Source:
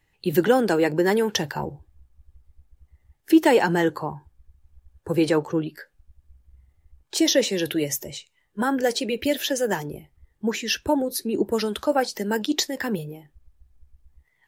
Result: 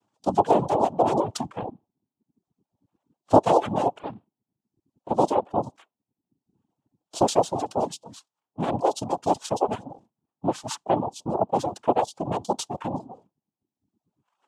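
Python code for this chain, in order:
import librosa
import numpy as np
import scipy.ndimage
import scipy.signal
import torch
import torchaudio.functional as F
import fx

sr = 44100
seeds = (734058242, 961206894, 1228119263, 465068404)

y = fx.noise_vocoder(x, sr, seeds[0], bands=4)
y = fx.dereverb_blind(y, sr, rt60_s=0.88)
y = fx.curve_eq(y, sr, hz=(140.0, 860.0, 2100.0, 3200.0), db=(0, 7, -15, -4))
y = y * 10.0 ** (-4.5 / 20.0)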